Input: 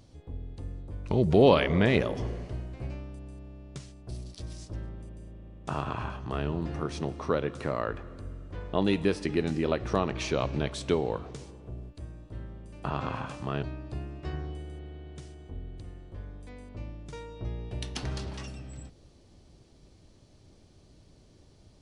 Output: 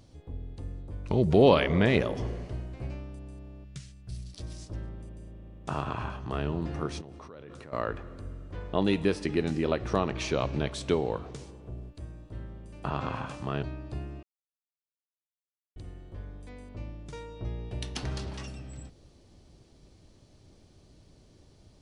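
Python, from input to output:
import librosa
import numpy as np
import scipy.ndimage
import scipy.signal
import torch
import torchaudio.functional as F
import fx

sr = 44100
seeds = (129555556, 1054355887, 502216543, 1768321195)

y = fx.band_shelf(x, sr, hz=550.0, db=-12.0, octaves=2.4, at=(3.64, 4.34))
y = fx.level_steps(y, sr, step_db=23, at=(7.0, 7.72), fade=0.02)
y = fx.edit(y, sr, fx.silence(start_s=14.23, length_s=1.53), tone=tone)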